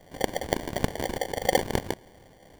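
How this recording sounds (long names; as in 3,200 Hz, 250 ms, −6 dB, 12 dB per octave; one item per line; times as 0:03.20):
phaser sweep stages 2, 0.95 Hz, lowest notch 660–3,500 Hz
aliases and images of a low sample rate 1,300 Hz, jitter 0%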